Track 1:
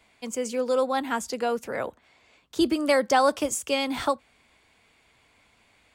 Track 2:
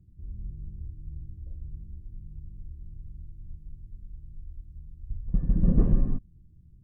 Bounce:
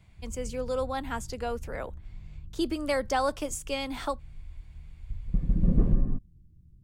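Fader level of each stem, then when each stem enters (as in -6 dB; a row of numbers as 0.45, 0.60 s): -6.5, -1.5 dB; 0.00, 0.00 s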